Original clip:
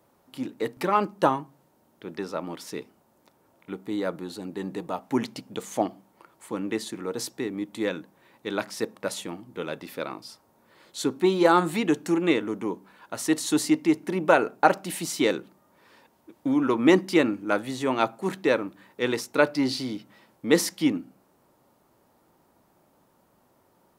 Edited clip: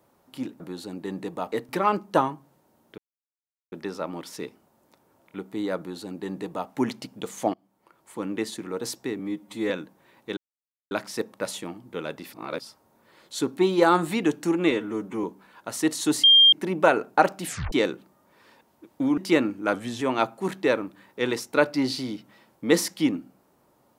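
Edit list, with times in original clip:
2.06 s: insert silence 0.74 s
4.12–5.04 s: copy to 0.60 s
5.88–6.59 s: fade in, from -22 dB
7.53–7.87 s: stretch 1.5×
8.54 s: insert silence 0.54 s
9.96–10.23 s: reverse
12.34–12.69 s: stretch 1.5×
13.69–13.98 s: bleep 3.2 kHz -11 dBFS
14.92 s: tape stop 0.26 s
16.63–17.01 s: delete
17.57–17.82 s: speed 91%

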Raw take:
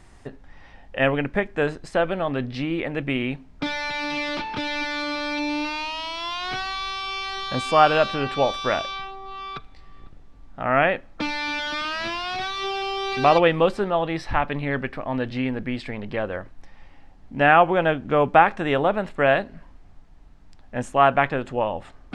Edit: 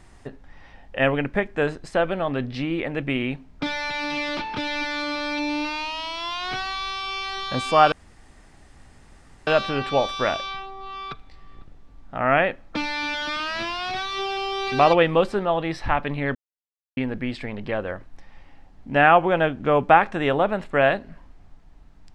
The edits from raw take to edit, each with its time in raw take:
7.92 s: insert room tone 1.55 s
14.80–15.42 s: mute

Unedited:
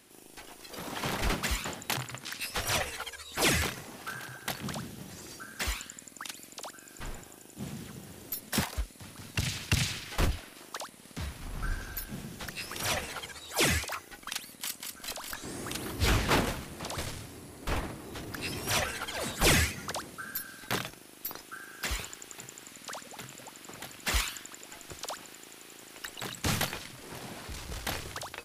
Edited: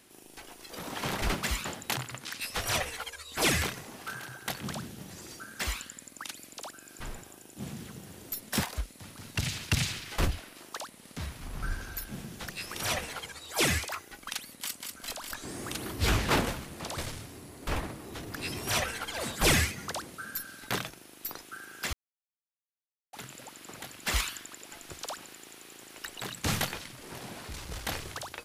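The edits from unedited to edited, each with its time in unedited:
21.93–23.13 s: mute

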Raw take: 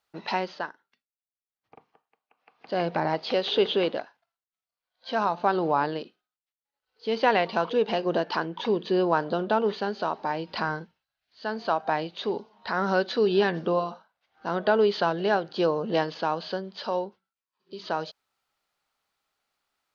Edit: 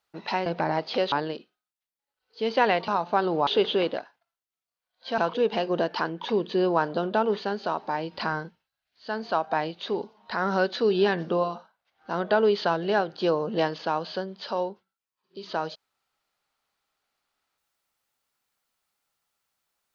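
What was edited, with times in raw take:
0.46–2.82 s: delete
3.48–5.19 s: swap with 5.78–7.54 s

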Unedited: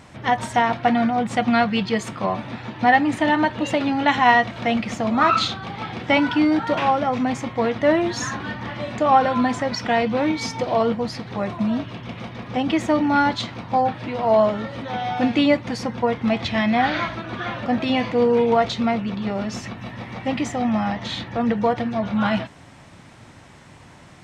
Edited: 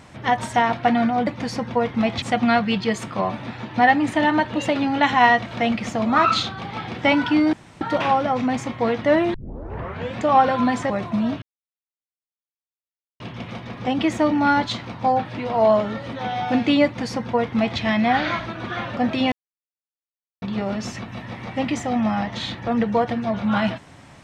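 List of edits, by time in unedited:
6.58 s: insert room tone 0.28 s
8.11 s: tape start 0.85 s
9.67–11.37 s: delete
11.89 s: insert silence 1.78 s
15.54–16.49 s: copy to 1.27 s
18.01–19.11 s: mute

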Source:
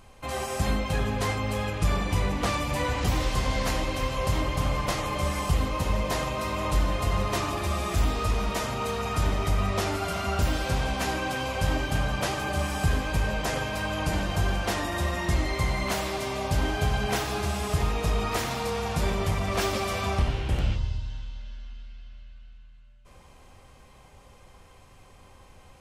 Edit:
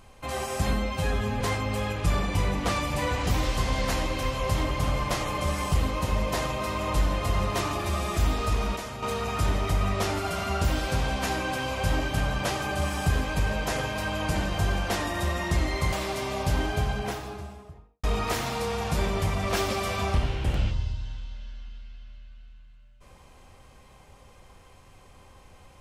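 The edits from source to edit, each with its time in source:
0.73–1.18 s: stretch 1.5×
8.54–8.80 s: gain -6.5 dB
15.70–15.97 s: delete
16.52–18.08 s: studio fade out

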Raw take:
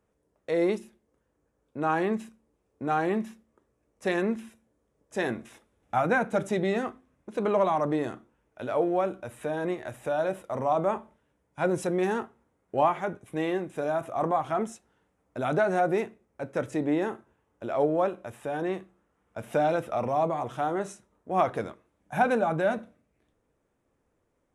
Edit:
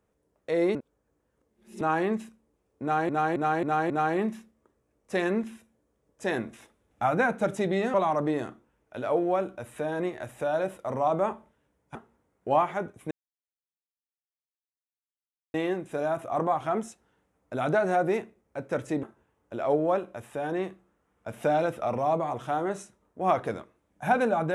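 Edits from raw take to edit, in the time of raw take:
0.75–1.81 s: reverse
2.82–3.09 s: loop, 5 plays
6.86–7.59 s: delete
11.60–12.22 s: delete
13.38 s: insert silence 2.43 s
16.87–17.13 s: delete

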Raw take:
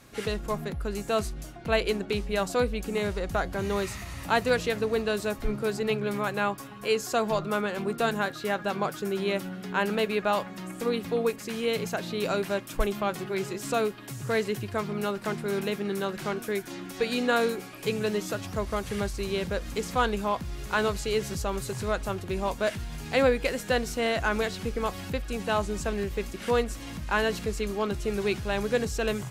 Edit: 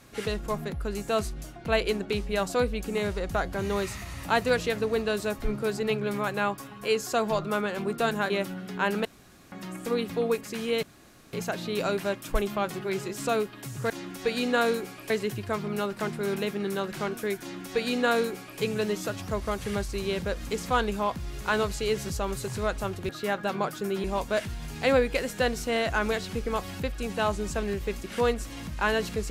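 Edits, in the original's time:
8.30–9.25 s: move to 22.34 s
10.00–10.47 s: room tone
11.78 s: insert room tone 0.50 s
16.65–17.85 s: copy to 14.35 s

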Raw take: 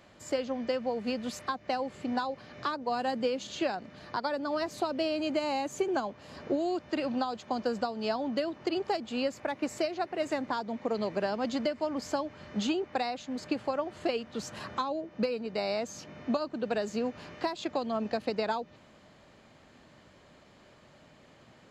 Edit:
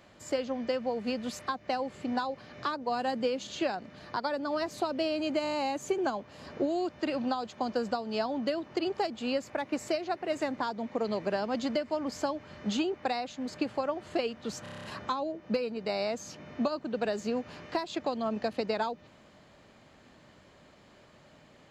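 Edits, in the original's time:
5.43 s: stutter 0.02 s, 6 plays
14.53 s: stutter 0.03 s, 8 plays

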